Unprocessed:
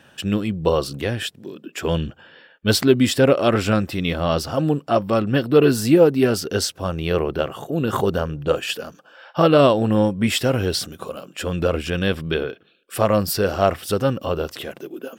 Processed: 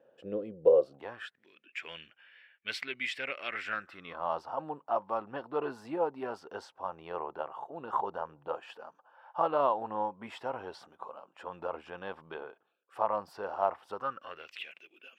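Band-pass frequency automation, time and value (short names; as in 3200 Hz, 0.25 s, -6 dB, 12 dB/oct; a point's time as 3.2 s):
band-pass, Q 5.8
0.79 s 510 Hz
1.47 s 2200 Hz
3.5 s 2200 Hz
4.27 s 910 Hz
13.93 s 910 Hz
14.51 s 2500 Hz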